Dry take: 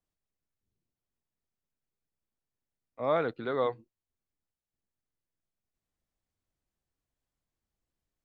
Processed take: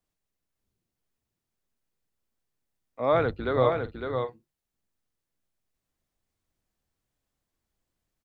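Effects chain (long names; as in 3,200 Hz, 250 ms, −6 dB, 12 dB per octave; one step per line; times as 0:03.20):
0:03.12–0:03.69: sub-octave generator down 2 octaves, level −1 dB
mains-hum notches 50/100/150 Hz
multi-tap delay 556/602 ms −5.5/−18.5 dB
level +4.5 dB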